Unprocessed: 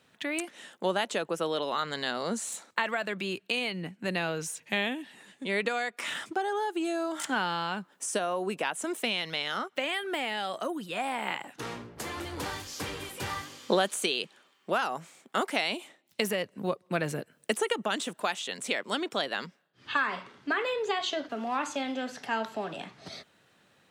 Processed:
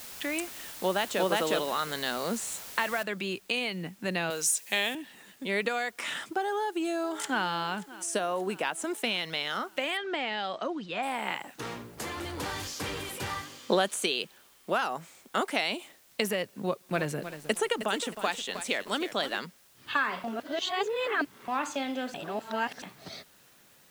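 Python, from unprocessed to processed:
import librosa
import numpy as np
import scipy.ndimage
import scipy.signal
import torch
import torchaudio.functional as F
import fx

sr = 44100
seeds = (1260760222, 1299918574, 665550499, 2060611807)

y = fx.echo_throw(x, sr, start_s=0.65, length_s=0.61, ms=360, feedback_pct=10, wet_db=0.0)
y = fx.noise_floor_step(y, sr, seeds[0], at_s=3.03, before_db=-44, after_db=-61, tilt_db=0.0)
y = fx.bass_treble(y, sr, bass_db=-12, treble_db=12, at=(4.3, 4.95))
y = fx.echo_throw(y, sr, start_s=6.45, length_s=0.99, ms=580, feedback_pct=60, wet_db=-18.0)
y = fx.lowpass(y, sr, hz=5600.0, slope=24, at=(9.97, 11.03))
y = fx.sustainer(y, sr, db_per_s=21.0, at=(11.9, 13.22))
y = fx.echo_crushed(y, sr, ms=313, feedback_pct=35, bits=7, wet_db=-10.0, at=(16.56, 19.4))
y = fx.edit(y, sr, fx.reverse_span(start_s=20.24, length_s=1.24),
    fx.reverse_span(start_s=22.14, length_s=0.68), tone=tone)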